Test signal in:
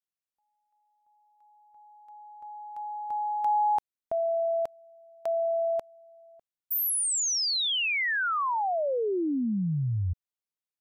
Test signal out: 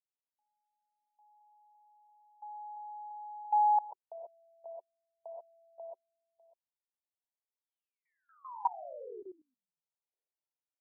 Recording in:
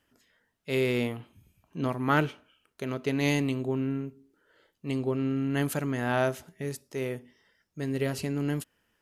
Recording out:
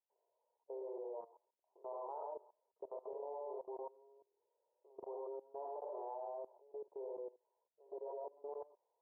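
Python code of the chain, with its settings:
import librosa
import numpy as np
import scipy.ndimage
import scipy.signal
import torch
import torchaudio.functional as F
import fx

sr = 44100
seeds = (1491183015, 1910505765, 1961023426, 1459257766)

y = scipy.signal.sosfilt(scipy.signal.cheby1(5, 1.0, [370.0, 980.0], 'bandpass', fs=sr, output='sos'), x)
y = np.diff(y, prepend=0.0)
y = fx.rev_gated(y, sr, seeds[0], gate_ms=150, shape='rising', drr_db=-4.0)
y = fx.level_steps(y, sr, step_db=20)
y = y * librosa.db_to_amplitude(15.0)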